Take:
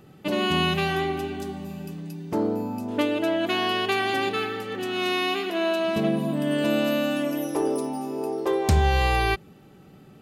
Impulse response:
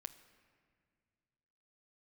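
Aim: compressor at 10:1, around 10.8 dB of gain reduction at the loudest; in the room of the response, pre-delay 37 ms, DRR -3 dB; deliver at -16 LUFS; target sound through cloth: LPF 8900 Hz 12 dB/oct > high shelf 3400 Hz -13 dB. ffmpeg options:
-filter_complex "[0:a]acompressor=threshold=-26dB:ratio=10,asplit=2[a][b];[1:a]atrim=start_sample=2205,adelay=37[c];[b][c]afir=irnorm=-1:irlink=0,volume=7.5dB[d];[a][d]amix=inputs=2:normalize=0,lowpass=8.9k,highshelf=f=3.4k:g=-13,volume=11dB"

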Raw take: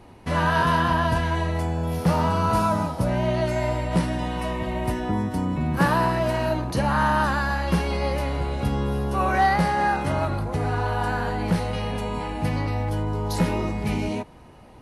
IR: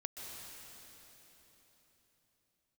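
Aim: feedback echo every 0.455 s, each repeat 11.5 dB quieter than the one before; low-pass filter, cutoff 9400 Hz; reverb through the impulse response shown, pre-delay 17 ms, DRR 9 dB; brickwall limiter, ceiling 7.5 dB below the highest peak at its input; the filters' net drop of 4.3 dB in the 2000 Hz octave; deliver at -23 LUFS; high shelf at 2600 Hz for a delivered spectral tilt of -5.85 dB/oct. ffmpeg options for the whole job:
-filter_complex "[0:a]lowpass=9.4k,equalizer=f=2k:t=o:g=-8,highshelf=f=2.6k:g=5.5,alimiter=limit=-17dB:level=0:latency=1,aecho=1:1:455|910|1365:0.266|0.0718|0.0194,asplit=2[a][b];[1:a]atrim=start_sample=2205,adelay=17[c];[b][c]afir=irnorm=-1:irlink=0,volume=-8dB[d];[a][d]amix=inputs=2:normalize=0,volume=2.5dB"

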